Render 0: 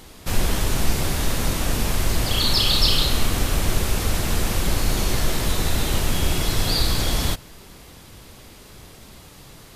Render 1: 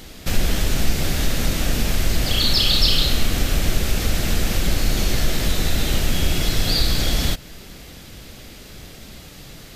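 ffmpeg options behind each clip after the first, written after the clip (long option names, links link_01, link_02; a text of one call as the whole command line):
ffmpeg -i in.wav -filter_complex "[0:a]equalizer=frequency=100:width_type=o:width=0.67:gain=-4,equalizer=frequency=400:width_type=o:width=0.67:gain=-3,equalizer=frequency=1000:width_type=o:width=0.67:gain=-9,equalizer=frequency=10000:width_type=o:width=0.67:gain=-6,asplit=2[link_01][link_02];[link_02]acompressor=threshold=-26dB:ratio=6,volume=0dB[link_03];[link_01][link_03]amix=inputs=2:normalize=0" out.wav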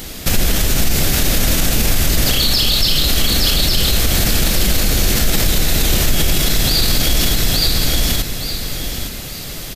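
ffmpeg -i in.wav -af "aecho=1:1:866|1732|2598|3464:0.631|0.189|0.0568|0.017,crystalizer=i=1:c=0,alimiter=level_in=12dB:limit=-1dB:release=50:level=0:latency=1,volume=-4dB" out.wav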